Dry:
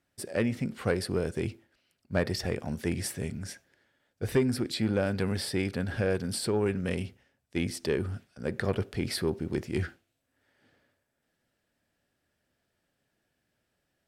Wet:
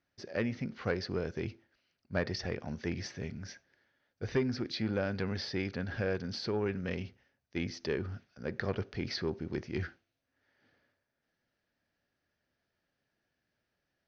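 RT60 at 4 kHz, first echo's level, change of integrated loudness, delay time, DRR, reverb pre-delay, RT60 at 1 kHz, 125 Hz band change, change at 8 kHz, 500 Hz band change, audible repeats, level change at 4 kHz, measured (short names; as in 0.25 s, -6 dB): none, none, -5.0 dB, none, none, none, none, -5.5 dB, -13.0 dB, -5.0 dB, none, -4.0 dB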